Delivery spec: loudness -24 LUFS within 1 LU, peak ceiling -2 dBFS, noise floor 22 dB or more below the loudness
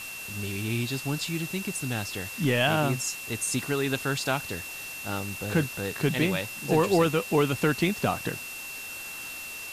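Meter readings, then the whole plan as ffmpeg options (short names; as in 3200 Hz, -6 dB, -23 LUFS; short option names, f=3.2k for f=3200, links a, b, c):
steady tone 2700 Hz; tone level -38 dBFS; noise floor -39 dBFS; noise floor target -50 dBFS; loudness -28.0 LUFS; peak -11.5 dBFS; loudness target -24.0 LUFS
-> -af "bandreject=f=2.7k:w=30"
-af "afftdn=nr=11:nf=-39"
-af "volume=4dB"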